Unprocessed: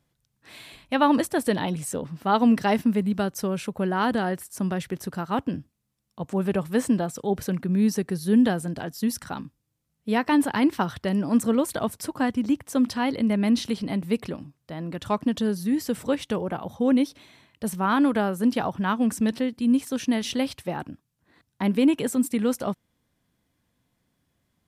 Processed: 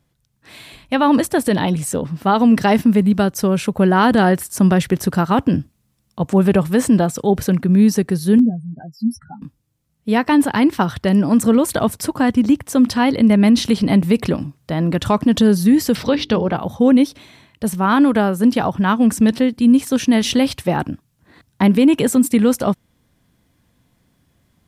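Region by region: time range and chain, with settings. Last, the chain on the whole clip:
8.38–9.42 s: spectral contrast enhancement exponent 3.7 + doubling 13 ms -9 dB + upward expansion, over -36 dBFS
15.95–16.56 s: resonant high shelf 6.2 kHz -10 dB, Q 3 + hum notches 50/100/150/200/250/300/350/400/450 Hz + tape noise reduction on one side only encoder only
whole clip: gain riding 2 s; bass shelf 190 Hz +4.5 dB; loudness maximiser +13 dB; trim -4.5 dB

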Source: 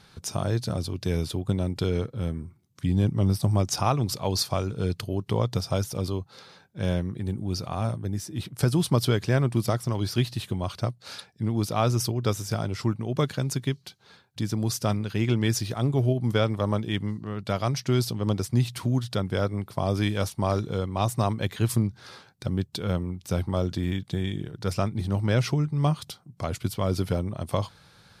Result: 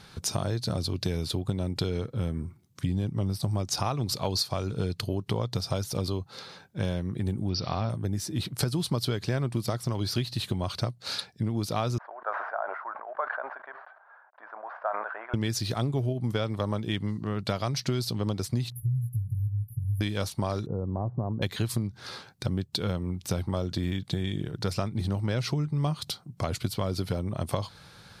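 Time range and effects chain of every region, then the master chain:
7.49–7.90 s: zero-crossing glitches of -32 dBFS + brick-wall FIR low-pass 5.9 kHz
11.98–15.34 s: CVSD coder 64 kbps + elliptic band-pass 630–1600 Hz, stop band 70 dB + decay stretcher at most 54 dB/s
18.70–20.01 s: brick-wall FIR band-stop 150–10000 Hz + doubling 17 ms -5 dB
20.66–21.42 s: compression 2:1, threshold -28 dBFS + Gaussian low-pass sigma 10 samples
whole clip: dynamic bell 4.2 kHz, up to +7 dB, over -54 dBFS, Q 3.6; compression, threshold -29 dBFS; trim +4 dB

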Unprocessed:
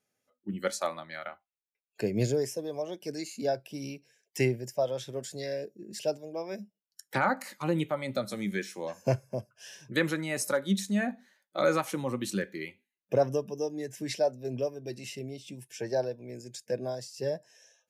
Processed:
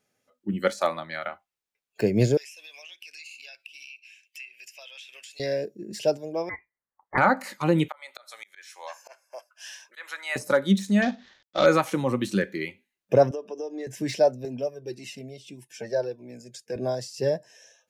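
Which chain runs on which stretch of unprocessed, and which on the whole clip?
2.37–5.40 s: resonant high-pass 2.6 kHz, resonance Q 12 + compression, threshold -48 dBFS
6.49–7.18 s: high-pass 590 Hz 24 dB/octave + frequency inversion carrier 2.6 kHz
7.88–10.36 s: high-pass 800 Hz 24 dB/octave + slow attack 348 ms
11.02–11.66 s: CVSD coder 32 kbps + peaking EQ 3.5 kHz +7.5 dB 0.4 oct
13.31–13.87 s: high-pass 320 Hz 24 dB/octave + compression 4:1, threshold -37 dBFS + distance through air 87 m
14.45–16.76 s: Chebyshev high-pass 180 Hz + Shepard-style flanger falling 1.7 Hz
whole clip: de-esser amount 90%; treble shelf 8.4 kHz -5.5 dB; trim +7 dB

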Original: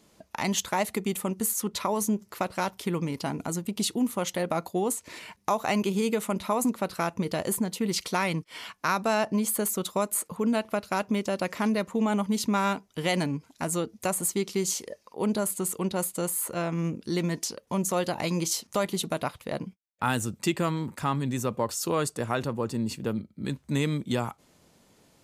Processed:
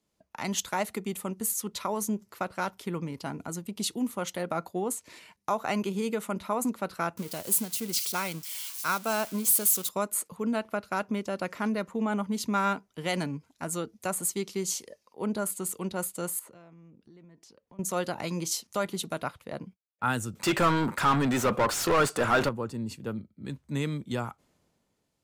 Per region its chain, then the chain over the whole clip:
7.17–9.89 s: zero-crossing glitches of -21 dBFS + band-stop 1.8 kHz, Q 13 + upward expansion, over -32 dBFS
16.39–17.79 s: low-pass 2 kHz 6 dB/octave + compression, threshold -41 dBFS
20.35–22.49 s: treble shelf 12 kHz +8.5 dB + overdrive pedal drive 27 dB, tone 3 kHz, clips at -14.5 dBFS
whole clip: dynamic bell 1.4 kHz, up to +6 dB, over -48 dBFS, Q 5.3; three bands expanded up and down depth 40%; trim -3.5 dB

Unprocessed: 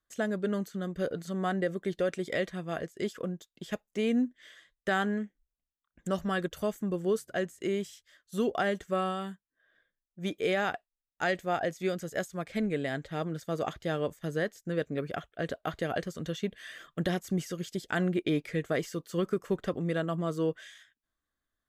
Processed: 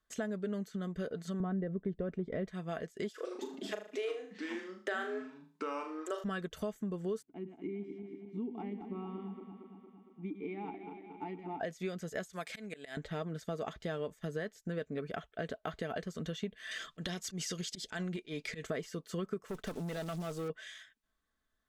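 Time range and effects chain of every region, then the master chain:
1.40–2.48 s: low-pass 1.6 kHz 6 dB/octave + tilt EQ -3.5 dB/octave
3.10–6.24 s: brick-wall FIR high-pass 290 Hz + ever faster or slower copies 146 ms, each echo -5 st, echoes 2, each echo -6 dB + flutter echo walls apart 6.6 m, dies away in 0.37 s
7.22–11.60 s: backward echo that repeats 115 ms, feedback 79%, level -11 dB + vowel filter u + tilt EQ -3 dB/octave
12.33–12.97 s: tilt EQ +3.5 dB/octave + slow attack 411 ms
16.71–18.67 s: peaking EQ 5.4 kHz +11 dB 2.2 oct + compression 8:1, threshold -29 dBFS + slow attack 115 ms
19.46–20.50 s: block-companded coder 5-bit + treble shelf 3.4 kHz +7.5 dB + valve stage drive 31 dB, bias 0.45
whole clip: treble shelf 11 kHz -11.5 dB; comb 4.6 ms, depth 36%; compression 3:1, threshold -41 dBFS; trim +3 dB

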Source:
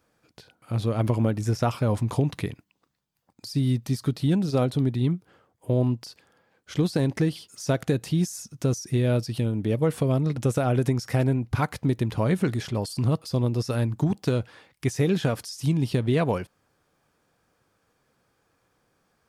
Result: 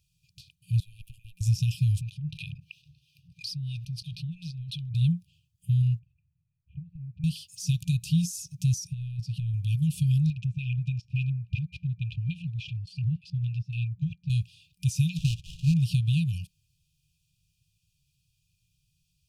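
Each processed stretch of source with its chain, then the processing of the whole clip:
0.80–1.41 s: high-pass 520 Hz 24 dB/octave + peaking EQ 5.2 kHz -15 dB 1.7 oct + valve stage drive 25 dB, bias 0.65
2.01–4.95 s: peaking EQ 7.3 kHz -11 dB 0.26 oct + wah-wah 3 Hz 310–1400 Hz, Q 2.3 + level flattener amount 70%
5.99–7.24 s: steep low-pass 1.9 kHz 48 dB/octave + peaking EQ 180 Hz -7.5 dB 0.36 oct + compression 5:1, threshold -35 dBFS
8.87–9.54 s: compressor with a negative ratio -25 dBFS, ratio -0.5 + low-pass 1.1 kHz 6 dB/octave + bass shelf 160 Hz -8 dB
10.30–14.30 s: bass shelf 420 Hz -6.5 dB + LFO low-pass square 3.5 Hz 990–2300 Hz
15.17–15.74 s: sample-rate reducer 2.3 kHz, jitter 20% + distance through air 59 m
whole clip: FFT band-reject 180–2400 Hz; bass shelf 78 Hz +8 dB

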